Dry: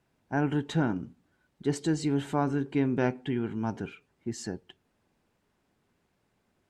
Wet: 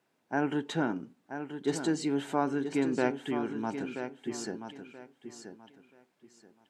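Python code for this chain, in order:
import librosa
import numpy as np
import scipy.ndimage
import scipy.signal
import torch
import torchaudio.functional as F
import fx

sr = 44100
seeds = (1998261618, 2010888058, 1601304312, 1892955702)

y = scipy.signal.sosfilt(scipy.signal.butter(2, 250.0, 'highpass', fs=sr, output='sos'), x)
y = fx.echo_feedback(y, sr, ms=980, feedback_pct=25, wet_db=-9.0)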